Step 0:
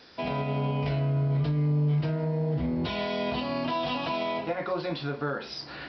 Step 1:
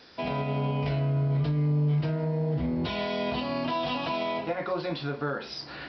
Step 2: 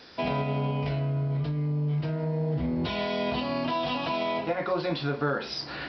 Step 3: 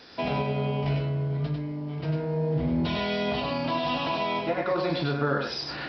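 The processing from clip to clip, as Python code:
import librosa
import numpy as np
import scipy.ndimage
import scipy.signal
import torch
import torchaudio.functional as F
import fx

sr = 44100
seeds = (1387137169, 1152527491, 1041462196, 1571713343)

y1 = x
y2 = fx.rider(y1, sr, range_db=4, speed_s=0.5)
y3 = y2 + 10.0 ** (-3.5 / 20.0) * np.pad(y2, (int(98 * sr / 1000.0), 0))[:len(y2)]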